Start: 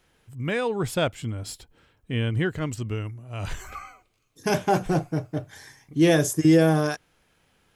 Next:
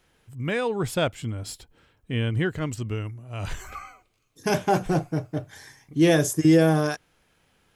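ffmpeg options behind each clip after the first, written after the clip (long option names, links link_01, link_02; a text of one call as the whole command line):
ffmpeg -i in.wav -af anull out.wav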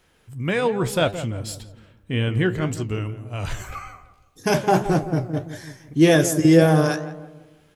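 ffmpeg -i in.wav -filter_complex "[0:a]asplit=2[link_01][link_02];[link_02]adelay=169,lowpass=frequency=1200:poles=1,volume=-11dB,asplit=2[link_03][link_04];[link_04]adelay=169,lowpass=frequency=1200:poles=1,volume=0.45,asplit=2[link_05][link_06];[link_06]adelay=169,lowpass=frequency=1200:poles=1,volume=0.45,asplit=2[link_07][link_08];[link_08]adelay=169,lowpass=frequency=1200:poles=1,volume=0.45,asplit=2[link_09][link_10];[link_10]adelay=169,lowpass=frequency=1200:poles=1,volume=0.45[link_11];[link_01][link_03][link_05][link_07][link_09][link_11]amix=inputs=6:normalize=0,flanger=delay=9.7:depth=7.4:regen=70:speed=1.8:shape=triangular,volume=8dB" out.wav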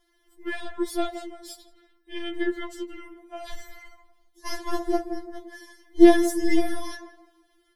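ffmpeg -i in.wav -af "aeval=exprs='0.75*(cos(1*acos(clip(val(0)/0.75,-1,1)))-cos(1*PI/2))+0.0944*(cos(4*acos(clip(val(0)/0.75,-1,1)))-cos(4*PI/2))':channel_layout=same,superequalizer=10b=0.562:12b=0.316:15b=0.501,afftfilt=real='re*4*eq(mod(b,16),0)':imag='im*4*eq(mod(b,16),0)':win_size=2048:overlap=0.75,volume=-3.5dB" out.wav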